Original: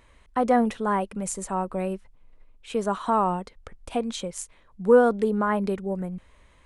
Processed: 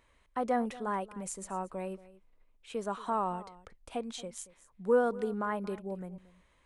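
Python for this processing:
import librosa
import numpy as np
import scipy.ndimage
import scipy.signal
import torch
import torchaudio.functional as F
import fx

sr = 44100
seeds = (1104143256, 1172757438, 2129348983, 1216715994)

p1 = fx.low_shelf(x, sr, hz=230.0, db=-4.5)
p2 = p1 + fx.echo_single(p1, sr, ms=229, db=-18.5, dry=0)
y = p2 * 10.0 ** (-8.5 / 20.0)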